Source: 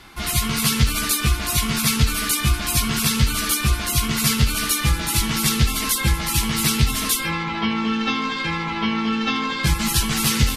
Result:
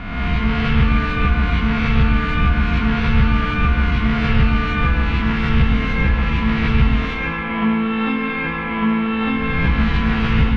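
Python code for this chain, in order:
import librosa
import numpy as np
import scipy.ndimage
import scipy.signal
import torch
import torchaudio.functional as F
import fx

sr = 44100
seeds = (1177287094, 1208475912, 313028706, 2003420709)

y = fx.spec_swells(x, sr, rise_s=1.34)
y = scipy.signal.sosfilt(scipy.signal.butter(4, 2400.0, 'lowpass', fs=sr, output='sos'), y)
y = y + 0.47 * np.pad(y, (int(4.2 * sr / 1000.0), 0))[:len(y)]
y = fx.rev_plate(y, sr, seeds[0], rt60_s=1.3, hf_ratio=0.7, predelay_ms=80, drr_db=5.0)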